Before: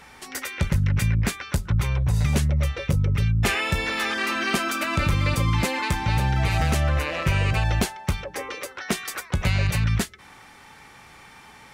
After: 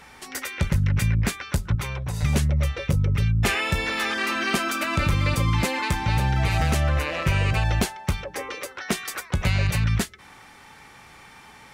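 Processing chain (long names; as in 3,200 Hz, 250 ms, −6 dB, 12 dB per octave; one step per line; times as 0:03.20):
0:01.75–0:02.23: low-shelf EQ 160 Hz −11 dB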